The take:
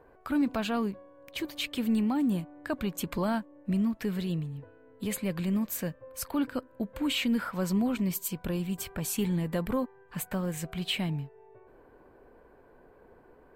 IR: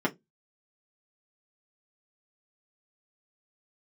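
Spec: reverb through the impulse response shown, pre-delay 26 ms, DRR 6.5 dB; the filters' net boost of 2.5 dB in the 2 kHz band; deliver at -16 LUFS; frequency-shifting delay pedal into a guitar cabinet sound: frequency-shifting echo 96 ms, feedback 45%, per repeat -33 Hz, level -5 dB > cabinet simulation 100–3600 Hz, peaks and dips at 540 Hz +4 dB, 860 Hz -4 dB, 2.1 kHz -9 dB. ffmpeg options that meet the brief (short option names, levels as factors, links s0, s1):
-filter_complex "[0:a]equalizer=f=2000:t=o:g=8,asplit=2[s0][s1];[1:a]atrim=start_sample=2205,adelay=26[s2];[s1][s2]afir=irnorm=-1:irlink=0,volume=0.15[s3];[s0][s3]amix=inputs=2:normalize=0,asplit=7[s4][s5][s6][s7][s8][s9][s10];[s5]adelay=96,afreqshift=-33,volume=0.562[s11];[s6]adelay=192,afreqshift=-66,volume=0.254[s12];[s7]adelay=288,afreqshift=-99,volume=0.114[s13];[s8]adelay=384,afreqshift=-132,volume=0.0513[s14];[s9]adelay=480,afreqshift=-165,volume=0.0232[s15];[s10]adelay=576,afreqshift=-198,volume=0.0104[s16];[s4][s11][s12][s13][s14][s15][s16]amix=inputs=7:normalize=0,highpass=100,equalizer=f=540:t=q:w=4:g=4,equalizer=f=860:t=q:w=4:g=-4,equalizer=f=2100:t=q:w=4:g=-9,lowpass=f=3600:w=0.5412,lowpass=f=3600:w=1.3066,volume=3.35"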